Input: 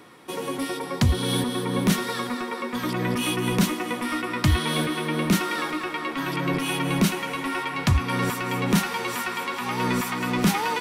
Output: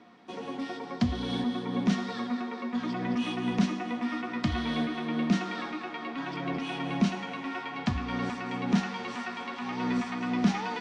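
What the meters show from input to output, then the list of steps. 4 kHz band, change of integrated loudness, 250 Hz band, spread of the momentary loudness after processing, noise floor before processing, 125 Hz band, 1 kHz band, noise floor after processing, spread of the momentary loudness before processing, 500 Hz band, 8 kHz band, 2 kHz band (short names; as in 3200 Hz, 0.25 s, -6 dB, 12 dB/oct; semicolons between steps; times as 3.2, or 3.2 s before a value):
-9.5 dB, -6.0 dB, -3.0 dB, 8 LU, -33 dBFS, -9.5 dB, -7.0 dB, -40 dBFS, 6 LU, -8.5 dB, -17.0 dB, -8.5 dB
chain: LPF 6200 Hz 24 dB/oct; low shelf 79 Hz -9.5 dB; resonator 64 Hz, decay 0.87 s, harmonics odd, mix 70%; small resonant body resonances 230/710 Hz, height 13 dB, ringing for 75 ms; Nellymoser 44 kbps 22050 Hz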